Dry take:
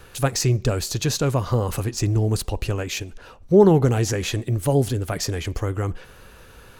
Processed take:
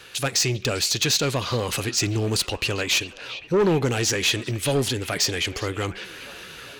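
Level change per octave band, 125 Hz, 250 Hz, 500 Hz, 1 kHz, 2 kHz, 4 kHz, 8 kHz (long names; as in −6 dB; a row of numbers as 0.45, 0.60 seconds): −6.5, −4.5, −3.5, −2.0, +7.0, +8.5, +4.5 decibels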